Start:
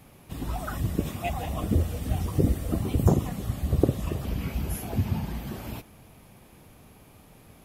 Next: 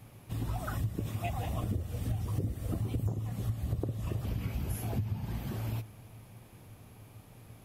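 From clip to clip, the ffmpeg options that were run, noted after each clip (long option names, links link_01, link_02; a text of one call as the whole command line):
ffmpeg -i in.wav -af "equalizer=frequency=110:width=5.6:gain=14.5,acompressor=threshold=-26dB:ratio=8,volume=-3.5dB" out.wav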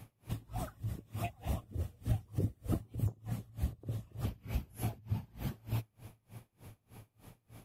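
ffmpeg -i in.wav -af "aeval=exprs='val(0)*pow(10,-30*(0.5-0.5*cos(2*PI*3.3*n/s))/20)':channel_layout=same,volume=2.5dB" out.wav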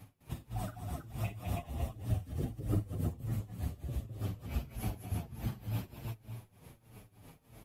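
ffmpeg -i in.wav -filter_complex "[0:a]aecho=1:1:49|206|324|559:0.335|0.398|0.708|0.251,asplit=2[link_01][link_02];[link_02]adelay=7.7,afreqshift=-1.4[link_03];[link_01][link_03]amix=inputs=2:normalize=1,volume=1.5dB" out.wav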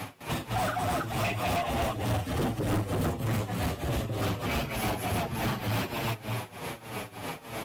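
ffmpeg -i in.wav -filter_complex "[0:a]acrossover=split=2300[link_01][link_02];[link_02]acrusher=bits=4:mode=log:mix=0:aa=0.000001[link_03];[link_01][link_03]amix=inputs=2:normalize=0,asplit=2[link_04][link_05];[link_05]highpass=frequency=720:poles=1,volume=35dB,asoftclip=type=tanh:threshold=-20dB[link_06];[link_04][link_06]amix=inputs=2:normalize=0,lowpass=frequency=3100:poles=1,volume=-6dB" out.wav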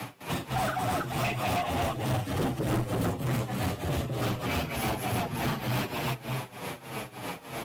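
ffmpeg -i in.wav -af "afreqshift=15" out.wav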